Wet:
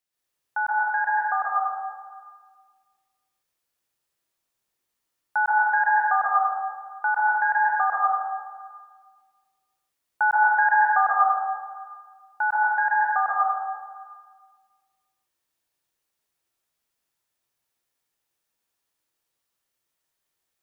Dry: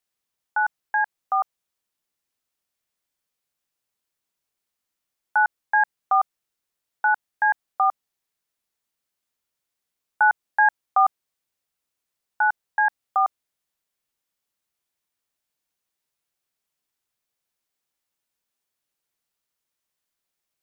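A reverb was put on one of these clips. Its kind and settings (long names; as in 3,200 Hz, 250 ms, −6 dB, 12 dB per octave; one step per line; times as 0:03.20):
dense smooth reverb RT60 1.6 s, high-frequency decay 0.7×, pre-delay 115 ms, DRR −6.5 dB
level −4 dB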